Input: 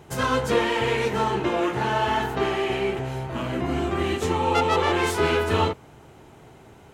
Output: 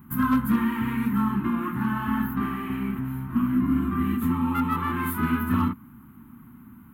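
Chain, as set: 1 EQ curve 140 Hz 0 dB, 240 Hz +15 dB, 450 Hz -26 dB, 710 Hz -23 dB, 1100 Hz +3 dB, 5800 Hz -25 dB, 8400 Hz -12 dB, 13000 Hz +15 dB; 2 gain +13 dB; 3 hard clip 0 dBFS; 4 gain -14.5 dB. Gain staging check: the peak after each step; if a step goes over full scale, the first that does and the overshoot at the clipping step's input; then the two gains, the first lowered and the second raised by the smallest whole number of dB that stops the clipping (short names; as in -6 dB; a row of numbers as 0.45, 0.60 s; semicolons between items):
-9.5, +3.5, 0.0, -14.5 dBFS; step 2, 3.5 dB; step 2 +9 dB, step 4 -10.5 dB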